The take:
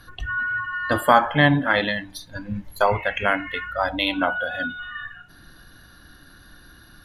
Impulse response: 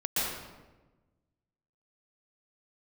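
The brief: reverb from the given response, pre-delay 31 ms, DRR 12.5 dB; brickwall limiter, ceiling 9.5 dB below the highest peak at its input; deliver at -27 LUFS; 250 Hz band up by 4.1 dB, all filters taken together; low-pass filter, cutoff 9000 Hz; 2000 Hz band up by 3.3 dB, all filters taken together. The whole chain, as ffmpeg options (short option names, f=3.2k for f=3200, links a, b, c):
-filter_complex "[0:a]lowpass=9k,equalizer=f=250:t=o:g=5,equalizer=f=2k:t=o:g=4.5,alimiter=limit=-9.5dB:level=0:latency=1,asplit=2[a][b];[1:a]atrim=start_sample=2205,adelay=31[c];[b][c]afir=irnorm=-1:irlink=0,volume=-21.5dB[d];[a][d]amix=inputs=2:normalize=0,volume=-4dB"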